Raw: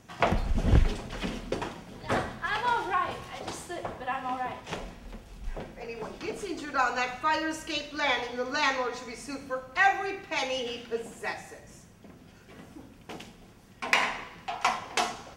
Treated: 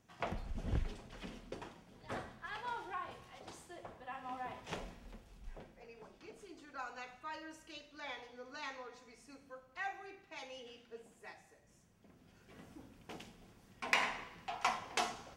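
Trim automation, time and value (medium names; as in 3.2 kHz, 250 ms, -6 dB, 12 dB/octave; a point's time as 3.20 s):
4.06 s -15 dB
4.76 s -7 dB
6.13 s -19 dB
11.57 s -19 dB
12.62 s -8 dB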